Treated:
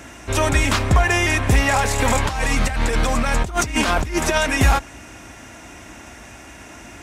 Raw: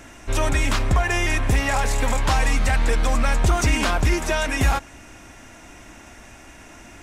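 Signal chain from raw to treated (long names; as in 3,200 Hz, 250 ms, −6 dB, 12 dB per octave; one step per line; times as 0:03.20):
high-pass filter 45 Hz 24 dB per octave
0:01.99–0:04.38: compressor whose output falls as the input rises −23 dBFS, ratio −0.5
level +4.5 dB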